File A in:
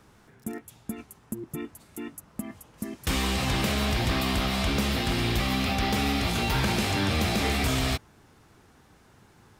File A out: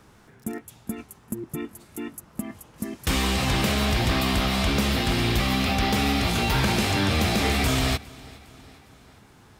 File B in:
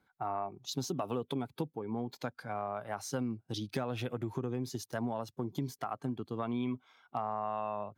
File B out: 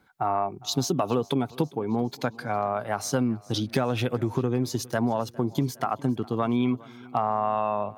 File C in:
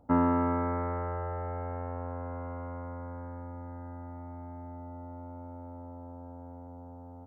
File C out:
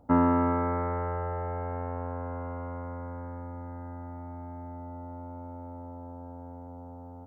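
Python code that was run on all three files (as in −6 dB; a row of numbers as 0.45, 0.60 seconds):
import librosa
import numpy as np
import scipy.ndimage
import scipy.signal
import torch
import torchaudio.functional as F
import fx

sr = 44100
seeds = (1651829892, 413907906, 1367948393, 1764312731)

y = fx.echo_feedback(x, sr, ms=408, feedback_pct=54, wet_db=-22.5)
y = librosa.util.normalize(y) * 10.0 ** (-12 / 20.0)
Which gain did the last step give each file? +3.0, +10.0, +2.5 decibels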